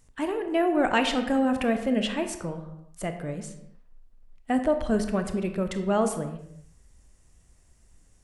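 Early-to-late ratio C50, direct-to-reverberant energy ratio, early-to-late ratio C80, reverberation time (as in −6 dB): 9.0 dB, 7.0 dB, 11.0 dB, non-exponential decay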